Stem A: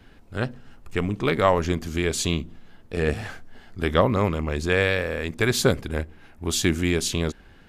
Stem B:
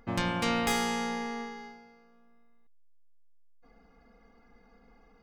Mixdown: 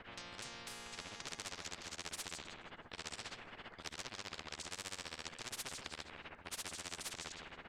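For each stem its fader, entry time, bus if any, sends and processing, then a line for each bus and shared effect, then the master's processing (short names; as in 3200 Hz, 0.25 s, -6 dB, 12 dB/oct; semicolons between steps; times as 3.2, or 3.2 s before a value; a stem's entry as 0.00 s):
-1.0 dB, 0.00 s, no send, echo send -19 dB, bell 8100 Hz +6.5 dB 0.25 oct; tube stage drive 26 dB, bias 0.45; tremolo 15 Hz, depth 95%
-12.0 dB, 0.00 s, no send, no echo send, high shelf 8700 Hz +8.5 dB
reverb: off
echo: feedback echo 0.159 s, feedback 37%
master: low-pass opened by the level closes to 1700 Hz, open at -22.5 dBFS; spectral compressor 10:1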